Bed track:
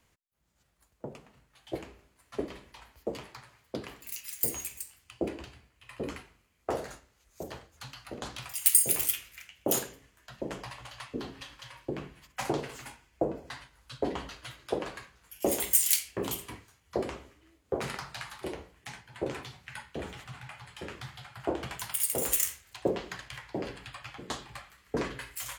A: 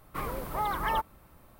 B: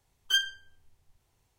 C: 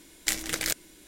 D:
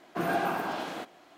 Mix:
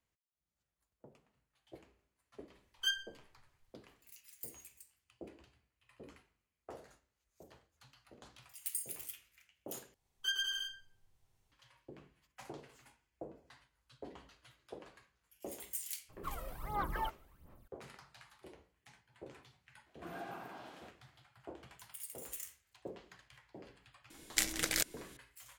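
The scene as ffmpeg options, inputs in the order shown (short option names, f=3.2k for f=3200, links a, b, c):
-filter_complex "[2:a]asplit=2[a][b];[0:a]volume=-18dB[c];[b]aecho=1:1:110|198|268.4|324.7|369.8:0.794|0.631|0.501|0.398|0.316[d];[1:a]aphaser=in_gain=1:out_gain=1:delay=1.6:decay=0.73:speed=1.4:type=sinusoidal[e];[c]asplit=2[f][g];[f]atrim=end=9.944[h];[d]atrim=end=1.58,asetpts=PTS-STARTPTS,volume=-10.5dB[i];[g]atrim=start=11.516[j];[a]atrim=end=1.58,asetpts=PTS-STARTPTS,volume=-8.5dB,afade=t=in:d=0.004:c=hsin,afade=t=out:st=1.576:d=0.004:c=hsin,adelay=2530[k];[e]atrim=end=1.59,asetpts=PTS-STARTPTS,volume=-13.5dB,afade=t=in:d=0.004:c=hsin,afade=t=out:st=1.586:d=0.004:c=hsin,adelay=16090[l];[4:a]atrim=end=1.37,asetpts=PTS-STARTPTS,volume=-17.5dB,afade=t=in:d=0.004:c=hsin,afade=t=out:st=1.366:d=0.004:c=hsin,adelay=19860[m];[3:a]atrim=end=1.07,asetpts=PTS-STARTPTS,volume=-4.5dB,afade=t=in:d=0.004:c=hsin,afade=t=out:st=1.066:d=0.004:c=hsin,adelay=24100[n];[h][i]acrossfade=d=0.004:c1=hsin:c2=hsin[o];[o][j]acrossfade=d=0.004:c1=hsin:c2=hsin[p];[p][k][l][m][n]amix=inputs=5:normalize=0"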